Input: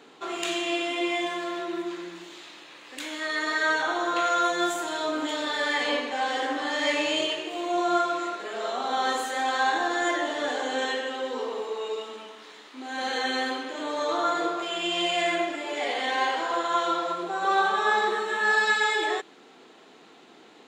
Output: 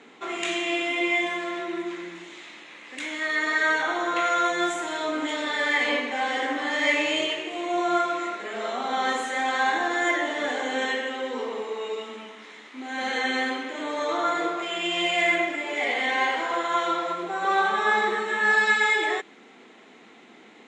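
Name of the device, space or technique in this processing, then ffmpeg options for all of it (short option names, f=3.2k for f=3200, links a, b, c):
car door speaker: -af "highpass=100,equalizer=f=220:t=q:w=4:g=8,equalizer=f=2.1k:t=q:w=4:g=9,equalizer=f=4.6k:t=q:w=4:g=-6,lowpass=f=9.1k:w=0.5412,lowpass=f=9.1k:w=1.3066"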